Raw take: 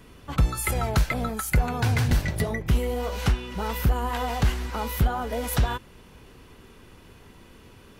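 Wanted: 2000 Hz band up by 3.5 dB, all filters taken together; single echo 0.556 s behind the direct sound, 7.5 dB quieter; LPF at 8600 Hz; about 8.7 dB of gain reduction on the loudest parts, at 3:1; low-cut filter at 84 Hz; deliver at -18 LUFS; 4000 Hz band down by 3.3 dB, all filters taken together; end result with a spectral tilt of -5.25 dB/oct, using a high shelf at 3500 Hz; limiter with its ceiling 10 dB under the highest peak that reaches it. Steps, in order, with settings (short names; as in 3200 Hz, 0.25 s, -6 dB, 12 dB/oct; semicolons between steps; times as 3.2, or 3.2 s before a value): HPF 84 Hz; LPF 8600 Hz; bell 2000 Hz +6 dB; high shelf 3500 Hz -3.5 dB; bell 4000 Hz -4.5 dB; compressor 3:1, threshold -31 dBFS; limiter -25.5 dBFS; echo 0.556 s -7.5 dB; gain +17.5 dB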